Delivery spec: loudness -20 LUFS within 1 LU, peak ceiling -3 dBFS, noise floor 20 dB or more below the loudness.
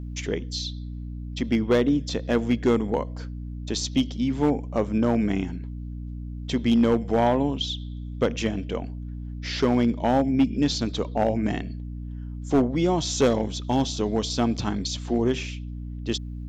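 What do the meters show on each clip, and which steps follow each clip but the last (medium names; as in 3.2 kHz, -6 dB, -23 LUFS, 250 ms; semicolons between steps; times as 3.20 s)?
clipped samples 0.5%; clipping level -13.5 dBFS; hum 60 Hz; highest harmonic 300 Hz; hum level -32 dBFS; loudness -25.0 LUFS; peak level -13.5 dBFS; loudness target -20.0 LUFS
-> clip repair -13.5 dBFS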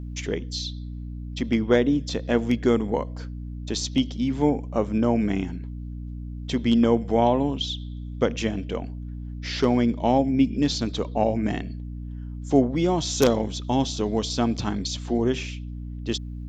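clipped samples 0.0%; hum 60 Hz; highest harmonic 300 Hz; hum level -32 dBFS
-> hum notches 60/120/180/240/300 Hz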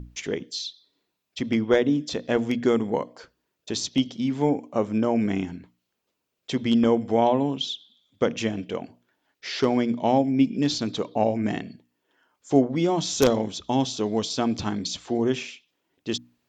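hum not found; loudness -25.0 LUFS; peak level -4.5 dBFS; loudness target -20.0 LUFS
-> trim +5 dB; peak limiter -3 dBFS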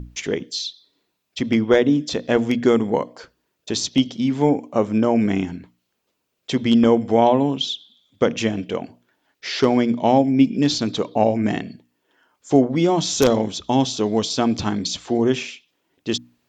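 loudness -20.0 LUFS; peak level -3.0 dBFS; noise floor -75 dBFS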